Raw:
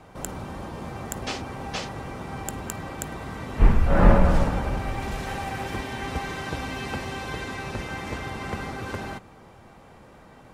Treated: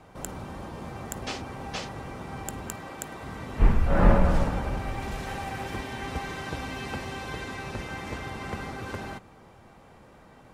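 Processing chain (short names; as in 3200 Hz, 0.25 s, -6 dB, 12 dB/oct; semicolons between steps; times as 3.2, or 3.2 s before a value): 2.75–3.23 low shelf 140 Hz -11.5 dB; gain -3 dB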